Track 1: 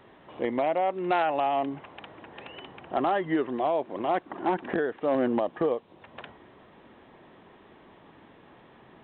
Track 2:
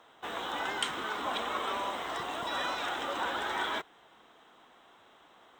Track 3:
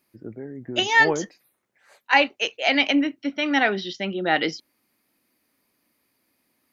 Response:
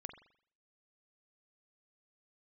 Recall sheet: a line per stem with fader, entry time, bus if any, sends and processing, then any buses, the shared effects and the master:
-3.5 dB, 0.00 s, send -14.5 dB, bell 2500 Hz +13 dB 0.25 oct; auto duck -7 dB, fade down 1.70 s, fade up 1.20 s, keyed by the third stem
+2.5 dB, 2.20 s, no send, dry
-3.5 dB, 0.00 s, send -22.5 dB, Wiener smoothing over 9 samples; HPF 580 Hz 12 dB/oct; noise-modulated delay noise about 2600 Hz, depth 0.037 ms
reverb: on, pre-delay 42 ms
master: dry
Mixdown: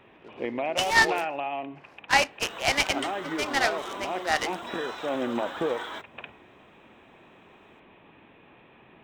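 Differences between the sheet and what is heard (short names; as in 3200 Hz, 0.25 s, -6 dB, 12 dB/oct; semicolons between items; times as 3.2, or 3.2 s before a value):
stem 2 +2.5 dB -> -4.0 dB; reverb return +7.5 dB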